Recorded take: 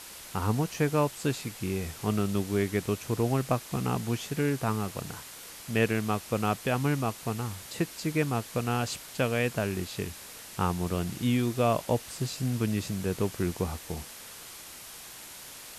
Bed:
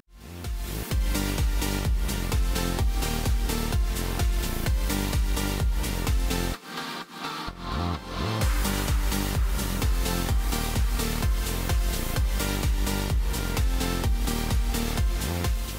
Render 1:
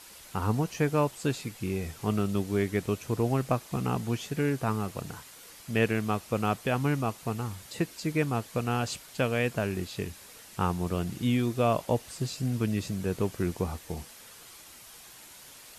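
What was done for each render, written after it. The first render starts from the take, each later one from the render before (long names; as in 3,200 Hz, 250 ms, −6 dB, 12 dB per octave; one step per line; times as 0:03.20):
broadband denoise 6 dB, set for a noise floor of −46 dBFS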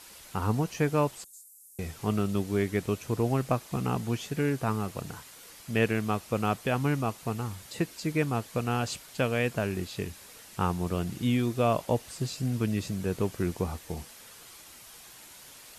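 0:01.24–0:01.79: inverse Chebyshev high-pass filter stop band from 2,600 Hz, stop band 60 dB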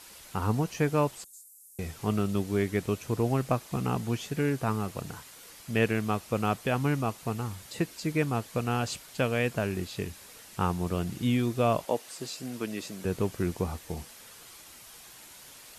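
0:11.85–0:13.05: high-pass filter 300 Hz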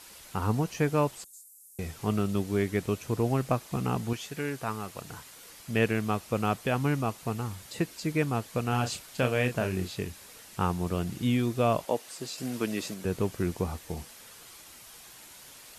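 0:04.13–0:05.11: low-shelf EQ 480 Hz −8.5 dB
0:08.69–0:09.95: double-tracking delay 32 ms −7 dB
0:12.38–0:12.94: clip gain +3.5 dB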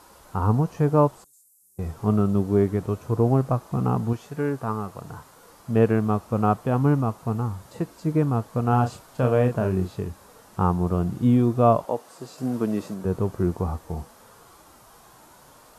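high shelf with overshoot 1,600 Hz −11 dB, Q 1.5
harmonic and percussive parts rebalanced harmonic +8 dB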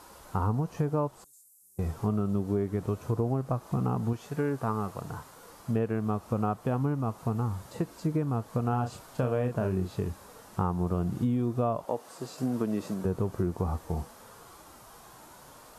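downward compressor, threshold −25 dBFS, peak gain reduction 12.5 dB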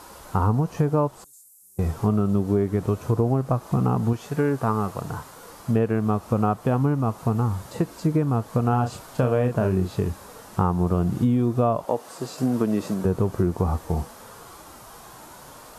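level +7 dB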